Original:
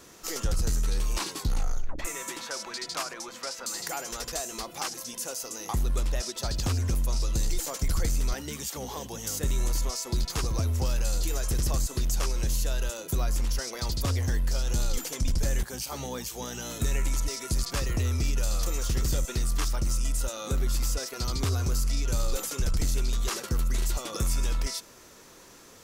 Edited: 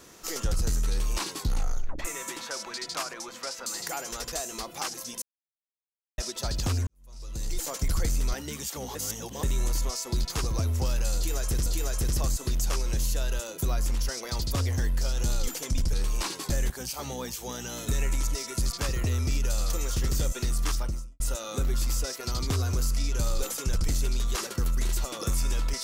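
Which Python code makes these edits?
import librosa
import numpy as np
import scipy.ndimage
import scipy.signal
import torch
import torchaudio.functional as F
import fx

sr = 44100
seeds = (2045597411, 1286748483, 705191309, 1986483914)

y = fx.studio_fade_out(x, sr, start_s=19.66, length_s=0.47)
y = fx.edit(y, sr, fx.duplicate(start_s=0.89, length_s=0.57, to_s=15.43),
    fx.silence(start_s=5.22, length_s=0.96),
    fx.fade_in_span(start_s=6.87, length_s=0.78, curve='qua'),
    fx.reverse_span(start_s=8.95, length_s=0.48),
    fx.repeat(start_s=11.16, length_s=0.5, count=2), tone=tone)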